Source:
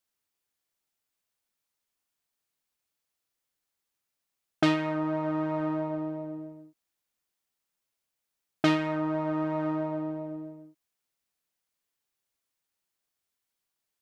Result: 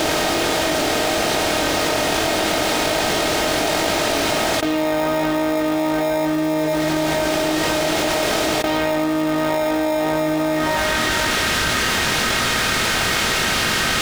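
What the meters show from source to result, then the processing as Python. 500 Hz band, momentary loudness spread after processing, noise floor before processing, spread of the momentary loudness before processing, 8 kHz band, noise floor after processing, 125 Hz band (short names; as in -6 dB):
+17.0 dB, 2 LU, -85 dBFS, 13 LU, n/a, -20 dBFS, +10.0 dB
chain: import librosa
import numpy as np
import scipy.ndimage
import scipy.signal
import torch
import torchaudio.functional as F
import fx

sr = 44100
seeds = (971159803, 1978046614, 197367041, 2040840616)

p1 = fx.bin_compress(x, sr, power=0.4)
p2 = fx.low_shelf(p1, sr, hz=250.0, db=10.5)
p3 = p2 + fx.echo_feedback(p2, sr, ms=488, feedback_pct=49, wet_db=-15.0, dry=0)
p4 = fx.chorus_voices(p3, sr, voices=6, hz=0.2, base_ms=22, depth_ms=4.0, mix_pct=40)
p5 = fx.filter_sweep_highpass(p4, sr, from_hz=520.0, to_hz=1300.0, start_s=10.3, end_s=10.95, q=1.4)
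p6 = fx.high_shelf(p5, sr, hz=6100.0, db=7.5)
p7 = fx.sample_hold(p6, sr, seeds[0], rate_hz=1500.0, jitter_pct=0)
p8 = p6 + F.gain(torch.from_numpy(p7), -6.0).numpy()
y = fx.env_flatten(p8, sr, amount_pct=100)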